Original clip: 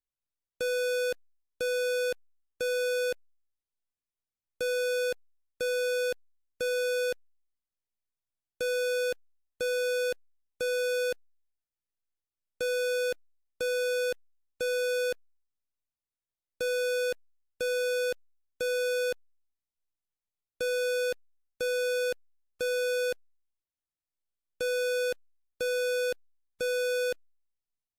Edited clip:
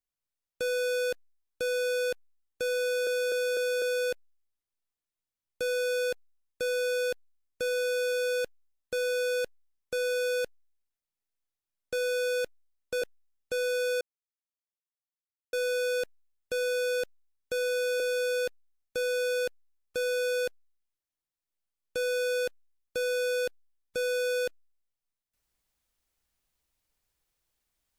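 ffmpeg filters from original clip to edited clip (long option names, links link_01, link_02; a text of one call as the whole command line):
ffmpeg -i in.wav -filter_complex "[0:a]asplit=10[link_01][link_02][link_03][link_04][link_05][link_06][link_07][link_08][link_09][link_10];[link_01]atrim=end=3.072[link_11];[link_02]atrim=start=2.818:end=3.072[link_12];[link_03]atrim=start=2.818:end=3.072[link_13];[link_04]atrim=start=2.818:end=3.072[link_14];[link_05]atrim=start=2.818:end=7.122[link_15];[link_06]atrim=start=8.798:end=13.702[link_16];[link_07]atrim=start=14.108:end=15.1,asetpts=PTS-STARTPTS,afade=type=out:start_time=0.988:duration=0.004:curve=hsin[link_17];[link_08]atrim=start=15.1:end=16.62,asetpts=PTS-STARTPTS,volume=0[link_18];[link_09]atrim=start=16.62:end=19.092,asetpts=PTS-STARTPTS,afade=type=in:duration=0.004:curve=hsin[link_19];[link_10]atrim=start=20.648[link_20];[link_11][link_12]acrossfade=duration=0.004:curve1=hsin:curve2=hsin[link_21];[link_21][link_13]acrossfade=duration=0.004:curve1=hsin:curve2=hsin[link_22];[link_22][link_14]acrossfade=duration=0.004:curve1=hsin:curve2=hsin[link_23];[link_23][link_15]acrossfade=duration=0.004:curve1=hsin:curve2=hsin[link_24];[link_24][link_16]acrossfade=duration=0.004:curve1=hsin:curve2=hsin[link_25];[link_17][link_18][link_19]concat=n=3:v=0:a=1[link_26];[link_25][link_26]acrossfade=duration=0.004:curve1=hsin:curve2=hsin[link_27];[link_27][link_20]acrossfade=duration=0.004:curve1=hsin:curve2=hsin" out.wav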